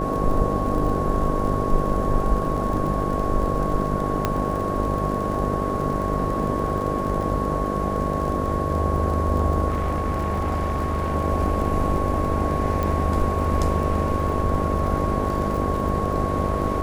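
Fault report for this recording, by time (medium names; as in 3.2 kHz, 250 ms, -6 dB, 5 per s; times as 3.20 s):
buzz 50 Hz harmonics 13 -27 dBFS
crackle 39 per s -29 dBFS
whine 1.1 kHz -27 dBFS
4.25 s: pop -7 dBFS
9.68–11.16 s: clipped -19.5 dBFS
12.83 s: pop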